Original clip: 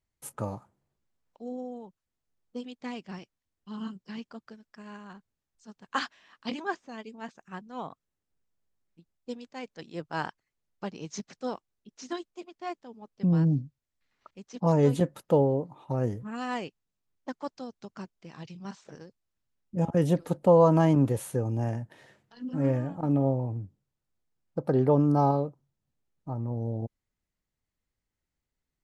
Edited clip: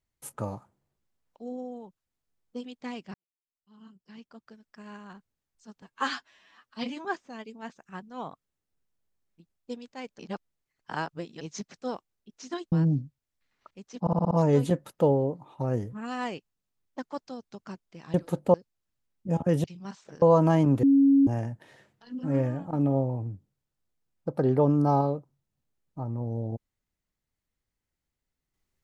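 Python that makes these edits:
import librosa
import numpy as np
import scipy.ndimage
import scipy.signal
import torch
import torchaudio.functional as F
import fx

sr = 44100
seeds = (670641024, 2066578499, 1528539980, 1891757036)

y = fx.edit(x, sr, fx.fade_in_span(start_s=3.14, length_s=1.68, curve='qua'),
    fx.stretch_span(start_s=5.82, length_s=0.82, factor=1.5),
    fx.reverse_span(start_s=9.78, length_s=1.22),
    fx.cut(start_s=12.31, length_s=1.01),
    fx.stutter(start_s=14.61, slice_s=0.06, count=6),
    fx.swap(start_s=18.44, length_s=0.58, other_s=20.12, other_length_s=0.4),
    fx.bleep(start_s=21.13, length_s=0.44, hz=276.0, db=-15.5), tone=tone)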